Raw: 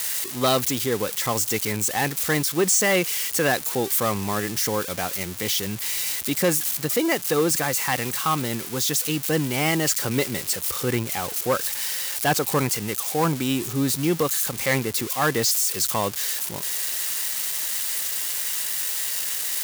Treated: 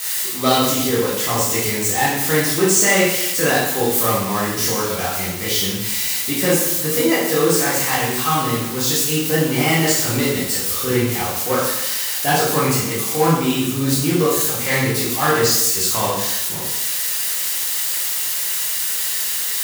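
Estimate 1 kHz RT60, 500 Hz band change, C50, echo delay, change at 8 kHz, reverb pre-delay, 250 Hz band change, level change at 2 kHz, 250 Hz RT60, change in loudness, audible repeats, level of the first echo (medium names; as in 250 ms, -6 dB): 0.90 s, +5.5 dB, 1.0 dB, no echo, +5.0 dB, 6 ms, +5.5 dB, +5.5 dB, 0.90 s, +5.5 dB, no echo, no echo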